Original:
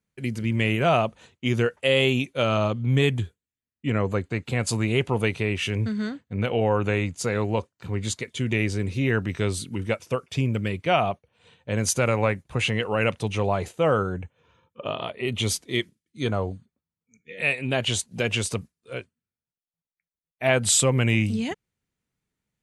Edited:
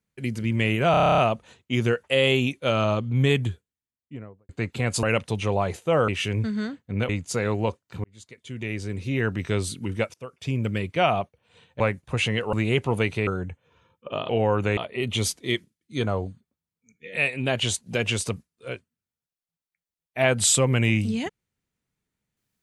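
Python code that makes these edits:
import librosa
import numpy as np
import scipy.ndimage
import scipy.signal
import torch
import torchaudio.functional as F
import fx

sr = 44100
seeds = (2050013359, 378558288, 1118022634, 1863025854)

y = fx.studio_fade_out(x, sr, start_s=3.24, length_s=0.98)
y = fx.edit(y, sr, fx.stutter(start_s=0.91, slice_s=0.03, count=10),
    fx.swap(start_s=4.76, length_s=0.74, other_s=12.95, other_length_s=1.05),
    fx.move(start_s=6.51, length_s=0.48, to_s=15.02),
    fx.fade_in_span(start_s=7.94, length_s=1.43),
    fx.fade_in_from(start_s=10.04, length_s=0.53, floor_db=-23.0),
    fx.cut(start_s=11.7, length_s=0.52), tone=tone)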